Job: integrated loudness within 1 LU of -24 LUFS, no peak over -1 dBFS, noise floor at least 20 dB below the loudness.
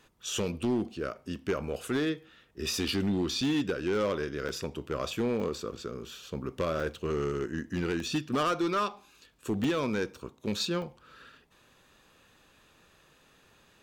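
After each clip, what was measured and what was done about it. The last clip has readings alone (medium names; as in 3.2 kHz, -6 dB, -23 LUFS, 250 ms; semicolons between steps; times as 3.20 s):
clipped samples 1.5%; clipping level -23.0 dBFS; dropouts 8; longest dropout 2.3 ms; loudness -32.0 LUFS; peak level -23.0 dBFS; loudness target -24.0 LUFS
-> clip repair -23 dBFS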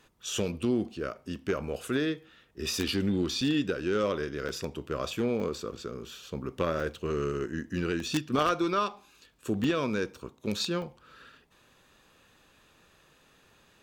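clipped samples 0.0%; dropouts 8; longest dropout 2.3 ms
-> interpolate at 2.88/3.41/4.49/5.40/6.80/8.00/9.64/10.82 s, 2.3 ms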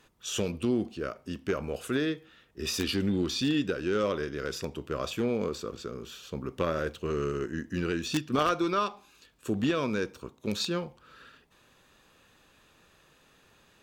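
dropouts 0; loudness -31.0 LUFS; peak level -14.0 dBFS; loudness target -24.0 LUFS
-> trim +7 dB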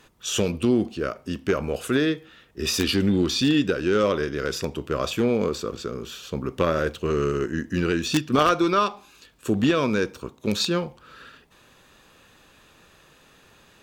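loudness -24.0 LUFS; peak level -7.0 dBFS; noise floor -56 dBFS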